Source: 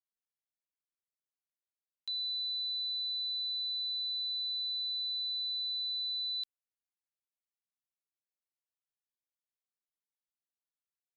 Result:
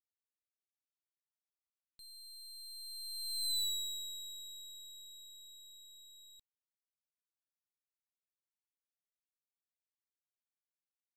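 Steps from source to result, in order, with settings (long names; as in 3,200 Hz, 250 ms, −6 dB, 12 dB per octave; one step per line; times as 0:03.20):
wavefolder on the positive side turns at −39 dBFS
source passing by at 0:03.57, 14 m/s, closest 2.3 metres
level +4.5 dB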